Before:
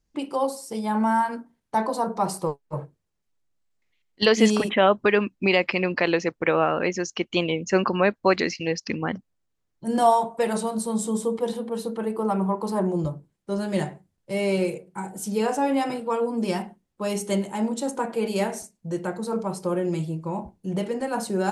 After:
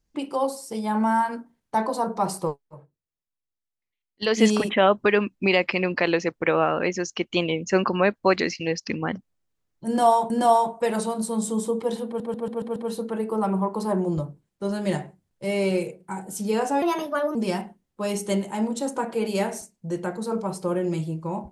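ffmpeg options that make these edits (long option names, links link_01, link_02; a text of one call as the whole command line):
ffmpeg -i in.wav -filter_complex "[0:a]asplit=11[link_01][link_02][link_03][link_04][link_05][link_06][link_07][link_08][link_09][link_10][link_11];[link_01]atrim=end=2.75,asetpts=PTS-STARTPTS,afade=type=out:start_time=2.47:duration=0.28:silence=0.177828[link_12];[link_02]atrim=start=2.75:end=4.15,asetpts=PTS-STARTPTS,volume=-15dB[link_13];[link_03]atrim=start=4.15:end=10.302,asetpts=PTS-STARTPTS,afade=type=in:duration=0.28:silence=0.177828[link_14];[link_04]atrim=start=9.868:end=11.772[link_15];[link_05]atrim=start=11.628:end=11.772[link_16];[link_06]atrim=start=11.628:end=11.772[link_17];[link_07]atrim=start=11.628:end=11.772[link_18];[link_08]atrim=start=11.628:end=11.772[link_19];[link_09]atrim=start=11.628:end=15.694[link_20];[link_10]atrim=start=15.69:end=16.36,asetpts=PTS-STARTPTS,asetrate=55566,aresample=44100[link_21];[link_11]atrim=start=16.356[link_22];[link_12][link_13][link_14]concat=n=3:v=0:a=1[link_23];[link_23][link_15]acrossfade=duration=0.004:curve1=hsin:curve2=hsin[link_24];[link_24][link_16]acrossfade=duration=0.004:curve1=hsin:curve2=hsin[link_25];[link_25][link_17]acrossfade=duration=0.004:curve1=hsin:curve2=hsin[link_26];[link_26][link_18]acrossfade=duration=0.004:curve1=hsin:curve2=hsin[link_27];[link_27][link_19]acrossfade=duration=0.004:curve1=hsin:curve2=hsin[link_28];[link_28][link_20]acrossfade=duration=0.004:curve1=hsin:curve2=hsin[link_29];[link_29][link_21]acrossfade=duration=0.004:curve1=hsin:curve2=hsin[link_30];[link_30][link_22]acrossfade=duration=0.004:curve1=hsin:curve2=hsin" out.wav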